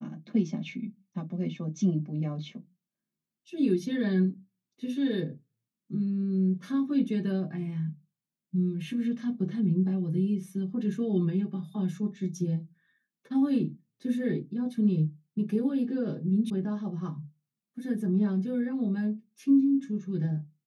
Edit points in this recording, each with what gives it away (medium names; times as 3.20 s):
16.50 s: sound stops dead